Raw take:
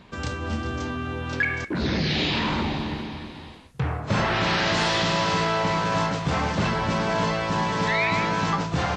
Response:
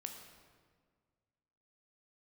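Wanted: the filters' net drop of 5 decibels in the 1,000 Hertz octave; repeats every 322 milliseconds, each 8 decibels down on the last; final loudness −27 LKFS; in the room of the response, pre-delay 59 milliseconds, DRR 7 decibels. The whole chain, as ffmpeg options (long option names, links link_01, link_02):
-filter_complex "[0:a]equalizer=frequency=1000:width_type=o:gain=-6,aecho=1:1:322|644|966|1288|1610:0.398|0.159|0.0637|0.0255|0.0102,asplit=2[link_01][link_02];[1:a]atrim=start_sample=2205,adelay=59[link_03];[link_02][link_03]afir=irnorm=-1:irlink=0,volume=-4dB[link_04];[link_01][link_04]amix=inputs=2:normalize=0,volume=-2.5dB"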